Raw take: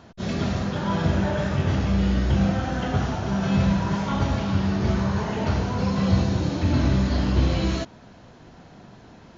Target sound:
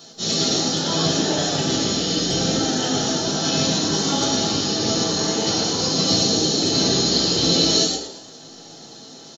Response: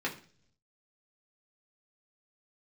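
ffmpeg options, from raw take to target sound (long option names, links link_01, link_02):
-filter_complex "[0:a]bandreject=frequency=48.31:width_type=h:width=4,bandreject=frequency=96.62:width_type=h:width=4,bandreject=frequency=144.93:width_type=h:width=4,bandreject=frequency=193.24:width_type=h:width=4,bandreject=frequency=241.55:width_type=h:width=4,bandreject=frequency=289.86:width_type=h:width=4,bandreject=frequency=338.17:width_type=h:width=4,bandreject=frequency=386.48:width_type=h:width=4,bandreject=frequency=434.79:width_type=h:width=4,bandreject=frequency=483.1:width_type=h:width=4,bandreject=frequency=531.41:width_type=h:width=4,bandreject=frequency=579.72:width_type=h:width=4,bandreject=frequency=628.03:width_type=h:width=4,bandreject=frequency=676.34:width_type=h:width=4,bandreject=frequency=724.65:width_type=h:width=4,bandreject=frequency=772.96:width_type=h:width=4,bandreject=frequency=821.27:width_type=h:width=4,bandreject=frequency=869.58:width_type=h:width=4,bandreject=frequency=917.89:width_type=h:width=4,bandreject=frequency=966.2:width_type=h:width=4,bandreject=frequency=1014.51:width_type=h:width=4,bandreject=frequency=1062.82:width_type=h:width=4,bandreject=frequency=1111.13:width_type=h:width=4,bandreject=frequency=1159.44:width_type=h:width=4,bandreject=frequency=1207.75:width_type=h:width=4,bandreject=frequency=1256.06:width_type=h:width=4,bandreject=frequency=1304.37:width_type=h:width=4,bandreject=frequency=1352.68:width_type=h:width=4,bandreject=frequency=1400.99:width_type=h:width=4,bandreject=frequency=1449.3:width_type=h:width=4,bandreject=frequency=1497.61:width_type=h:width=4,bandreject=frequency=1545.92:width_type=h:width=4,bandreject=frequency=1594.23:width_type=h:width=4,bandreject=frequency=1642.54:width_type=h:width=4,bandreject=frequency=1690.85:width_type=h:width=4,bandreject=frequency=1739.16:width_type=h:width=4,bandreject=frequency=1787.47:width_type=h:width=4,asplit=5[link_01][link_02][link_03][link_04][link_05];[link_02]adelay=114,afreqshift=110,volume=-5dB[link_06];[link_03]adelay=228,afreqshift=220,volume=-14.1dB[link_07];[link_04]adelay=342,afreqshift=330,volume=-23.2dB[link_08];[link_05]adelay=456,afreqshift=440,volume=-32.4dB[link_09];[link_01][link_06][link_07][link_08][link_09]amix=inputs=5:normalize=0[link_10];[1:a]atrim=start_sample=2205,asetrate=70560,aresample=44100[link_11];[link_10][link_11]afir=irnorm=-1:irlink=0,aexciter=amount=10.6:drive=6.3:freq=3700"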